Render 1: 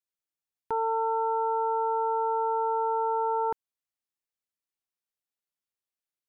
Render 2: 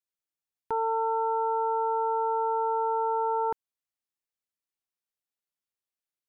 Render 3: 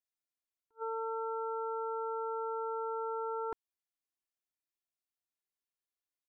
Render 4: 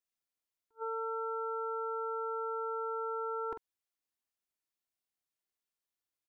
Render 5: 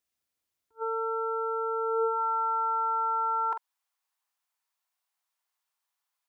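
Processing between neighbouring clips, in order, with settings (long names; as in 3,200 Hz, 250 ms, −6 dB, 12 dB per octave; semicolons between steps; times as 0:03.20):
no processing that can be heard
comb filter 2.9 ms, depth 92%; level that may rise only so fast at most 470 dB per second; level −8.5 dB
double-tracking delay 46 ms −7.5 dB
high-pass filter sweep 63 Hz → 920 Hz, 0:01.52–0:02.23; level +6 dB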